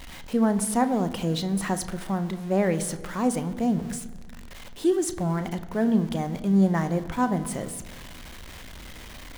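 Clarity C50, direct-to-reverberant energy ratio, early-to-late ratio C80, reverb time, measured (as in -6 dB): 13.5 dB, 9.5 dB, 15.0 dB, 1.4 s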